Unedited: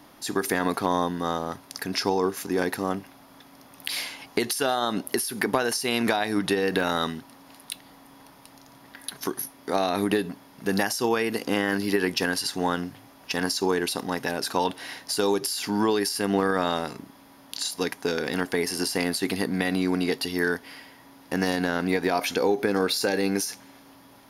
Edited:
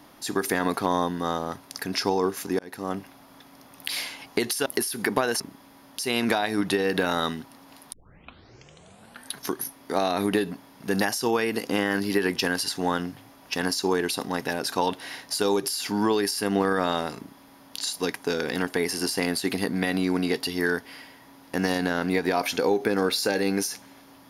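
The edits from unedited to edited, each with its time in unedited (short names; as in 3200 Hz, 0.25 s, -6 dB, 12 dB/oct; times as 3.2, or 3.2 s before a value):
2.59–3 fade in
4.66–5.03 cut
7.71 tape start 1.40 s
16.95–17.54 copy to 5.77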